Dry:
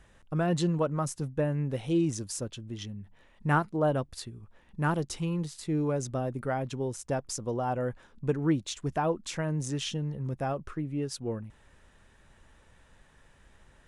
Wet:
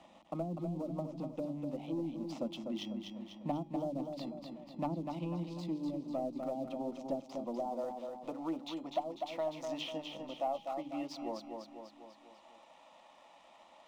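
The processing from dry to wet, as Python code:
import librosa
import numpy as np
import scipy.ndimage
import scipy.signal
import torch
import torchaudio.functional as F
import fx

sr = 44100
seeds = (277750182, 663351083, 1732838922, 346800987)

y = fx.tracing_dist(x, sr, depth_ms=0.024)
y = fx.highpass(y, sr, hz=fx.steps((0.0, 210.0), (7.65, 510.0)), slope=12)
y = fx.env_lowpass_down(y, sr, base_hz=330.0, full_db=-26.0)
y = scipy.signal.sosfilt(scipy.signal.butter(2, 4000.0, 'lowpass', fs=sr, output='sos'), y)
y = fx.peak_eq(y, sr, hz=650.0, db=4.0, octaves=0.22)
y = fx.hum_notches(y, sr, base_hz=50, count=8)
y = fx.leveller(y, sr, passes=1)
y = fx.rider(y, sr, range_db=5, speed_s=0.5)
y = fx.fixed_phaser(y, sr, hz=430.0, stages=6)
y = fx.comb_fb(y, sr, f0_hz=820.0, decay_s=0.37, harmonics='all', damping=0.0, mix_pct=60)
y = fx.echo_feedback(y, sr, ms=247, feedback_pct=43, wet_db=-6.5)
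y = fx.band_squash(y, sr, depth_pct=40)
y = F.gain(torch.from_numpy(y), 4.5).numpy()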